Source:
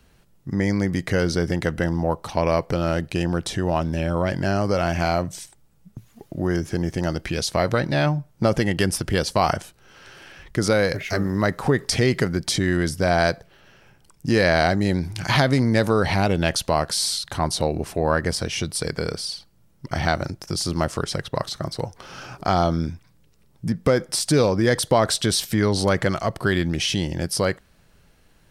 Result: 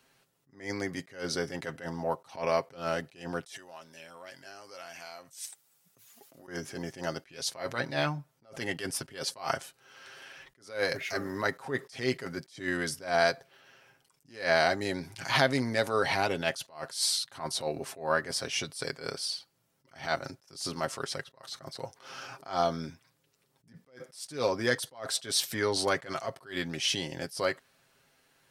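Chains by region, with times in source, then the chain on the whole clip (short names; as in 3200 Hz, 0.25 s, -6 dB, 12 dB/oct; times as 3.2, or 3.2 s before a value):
3.46–6.48 compressor 16:1, threshold -33 dBFS + tilt +3 dB/oct
whole clip: HPF 550 Hz 6 dB/oct; comb 7.5 ms, depth 52%; attack slew limiter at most 160 dB/s; gain -4.5 dB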